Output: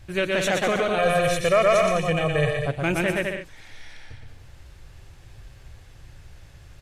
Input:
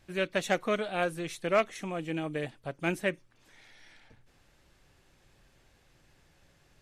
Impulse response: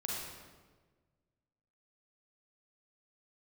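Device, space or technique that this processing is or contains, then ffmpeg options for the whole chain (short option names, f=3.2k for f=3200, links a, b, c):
car stereo with a boomy subwoofer: -filter_complex "[0:a]lowshelf=f=140:t=q:w=1.5:g=10,aecho=1:1:120|204|262.8|304|332.8:0.631|0.398|0.251|0.158|0.1,alimiter=limit=-22.5dB:level=0:latency=1:release=11,asettb=1/sr,asplit=3[a][b][c];[a]atrim=end=0.984[d];[b]atrim=start=0.98:end=2.67,asetpts=PTS-STARTPTS,afade=t=in:d=0.004:c=qsin,afade=t=out:st=1.686:d=0.004:c=qsin,aecho=1:1:1.7:0.86,atrim=end_sample=74529[e];[c]atrim=start=2.666[f];[d][e]acrossfade=d=0.004:c1=hsin:c2=qsin[g];[g][f]acrossfade=d=0.004:c1=qsin:c2=hsin,volume=8.5dB"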